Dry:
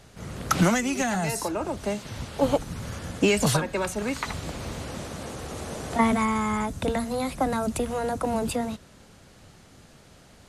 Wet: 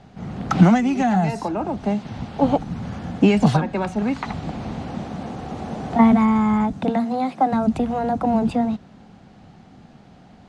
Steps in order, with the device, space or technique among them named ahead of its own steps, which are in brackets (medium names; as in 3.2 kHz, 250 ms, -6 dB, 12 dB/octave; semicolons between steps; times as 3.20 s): 6.73–7.51 s: high-pass 130 Hz -> 330 Hz 12 dB/octave; inside a cardboard box (low-pass 4.2 kHz 12 dB/octave; small resonant body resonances 200/750 Hz, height 12 dB, ringing for 20 ms); trim -1.5 dB